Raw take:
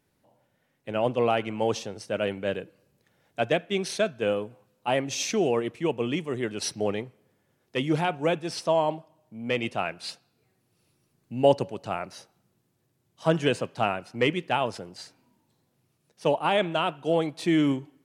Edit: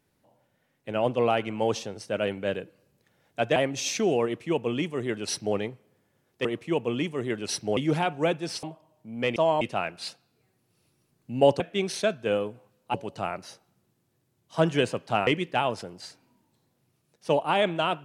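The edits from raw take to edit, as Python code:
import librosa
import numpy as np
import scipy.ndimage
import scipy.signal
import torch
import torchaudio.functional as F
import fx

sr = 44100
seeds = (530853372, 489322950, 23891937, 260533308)

y = fx.edit(x, sr, fx.move(start_s=3.56, length_s=1.34, to_s=11.62),
    fx.duplicate(start_s=5.58, length_s=1.32, to_s=7.79),
    fx.move(start_s=8.65, length_s=0.25, to_s=9.63),
    fx.cut(start_s=13.95, length_s=0.28), tone=tone)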